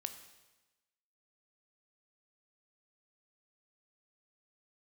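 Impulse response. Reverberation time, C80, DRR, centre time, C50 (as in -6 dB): 1.1 s, 12.0 dB, 8.0 dB, 14 ms, 10.0 dB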